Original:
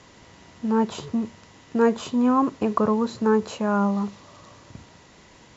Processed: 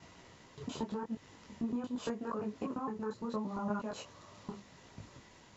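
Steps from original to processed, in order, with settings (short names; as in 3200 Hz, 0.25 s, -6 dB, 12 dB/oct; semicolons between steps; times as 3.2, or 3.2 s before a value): slices in reverse order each 0.115 s, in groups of 5; compressor 6:1, threshold -27 dBFS, peak gain reduction 12 dB; detuned doubles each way 28 cents; gain -3.5 dB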